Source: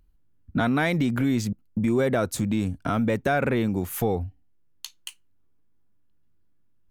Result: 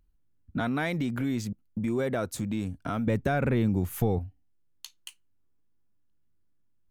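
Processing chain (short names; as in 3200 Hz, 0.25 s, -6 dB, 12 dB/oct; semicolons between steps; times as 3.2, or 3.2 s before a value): 3.07–4.19 low shelf 200 Hz +11.5 dB; gain -6 dB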